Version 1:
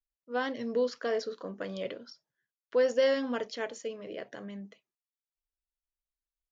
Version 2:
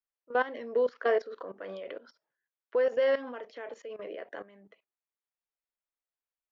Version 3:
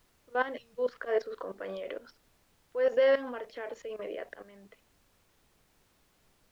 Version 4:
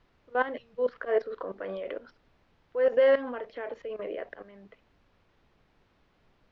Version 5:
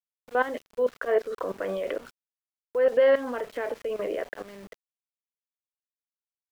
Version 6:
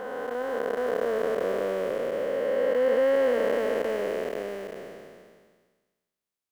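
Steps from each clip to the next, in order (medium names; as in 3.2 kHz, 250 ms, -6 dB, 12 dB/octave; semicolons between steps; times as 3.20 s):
three-band isolator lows -21 dB, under 320 Hz, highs -20 dB, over 2.8 kHz; level held to a coarse grid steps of 16 dB; trim +8 dB
slow attack 143 ms; time-frequency box 0.57–0.78 s, 210–2400 Hz -28 dB; added noise pink -70 dBFS; trim +2 dB
distance through air 240 m; trim +3.5 dB
in parallel at +2.5 dB: compression 10:1, threshold -35 dBFS, peak gain reduction 17.5 dB; on the sum: small samples zeroed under -44.5 dBFS
spectral blur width 1120 ms; trim +8.5 dB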